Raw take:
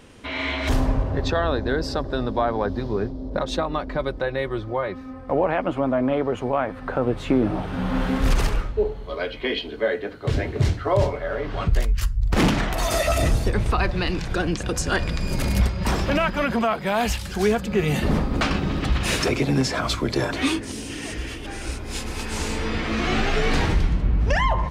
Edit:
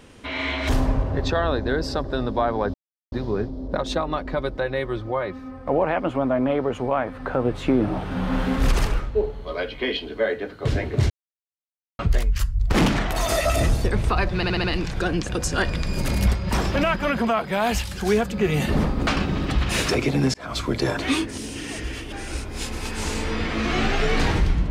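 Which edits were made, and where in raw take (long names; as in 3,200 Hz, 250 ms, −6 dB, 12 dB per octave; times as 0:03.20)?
0:02.74: splice in silence 0.38 s
0:10.72–0:11.61: silence
0:13.98: stutter 0.07 s, 5 plays
0:19.68–0:20.01: fade in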